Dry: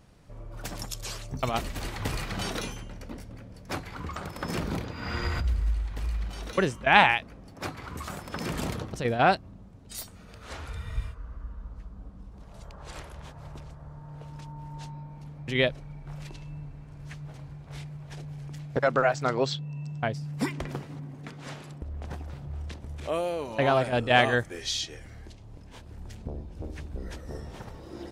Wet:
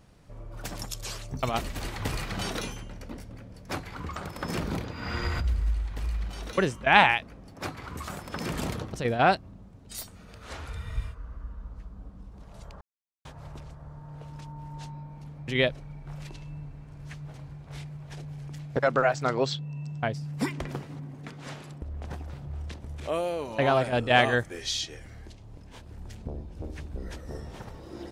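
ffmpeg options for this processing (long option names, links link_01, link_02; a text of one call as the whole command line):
ffmpeg -i in.wav -filter_complex "[0:a]asplit=3[link_01][link_02][link_03];[link_01]atrim=end=12.81,asetpts=PTS-STARTPTS,afade=type=out:start_time=12.806:duration=0.004:curve=hsin[link_04];[link_02]atrim=start=12.81:end=13.25,asetpts=PTS-STARTPTS,volume=0[link_05];[link_03]atrim=start=13.25,asetpts=PTS-STARTPTS,afade=type=in:duration=0.004:curve=hsin[link_06];[link_04][link_05][link_06]concat=n=3:v=0:a=1" out.wav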